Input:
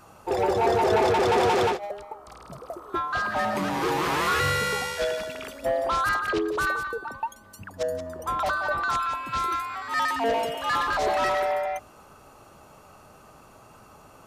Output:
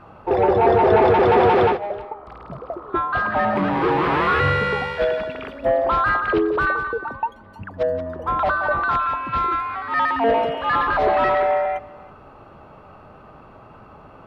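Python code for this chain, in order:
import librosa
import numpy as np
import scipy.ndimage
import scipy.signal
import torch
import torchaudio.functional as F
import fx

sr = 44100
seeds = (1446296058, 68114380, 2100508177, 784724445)

y = fx.air_absorb(x, sr, metres=430.0)
y = y + 10.0 ** (-22.5 / 20.0) * np.pad(y, (int(328 * sr / 1000.0), 0))[:len(y)]
y = F.gain(torch.from_numpy(y), 8.0).numpy()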